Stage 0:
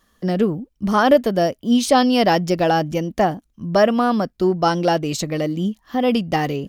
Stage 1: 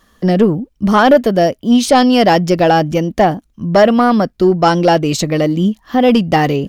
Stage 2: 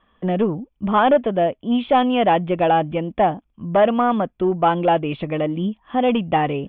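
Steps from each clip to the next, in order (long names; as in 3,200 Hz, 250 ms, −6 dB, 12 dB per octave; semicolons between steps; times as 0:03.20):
in parallel at −1.5 dB: speech leveller 2 s; on the sum: high-shelf EQ 5,800 Hz −4 dB; soft clipping −3 dBFS, distortion −18 dB; level +2 dB
Chebyshev low-pass with heavy ripple 3,500 Hz, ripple 6 dB; level −3.5 dB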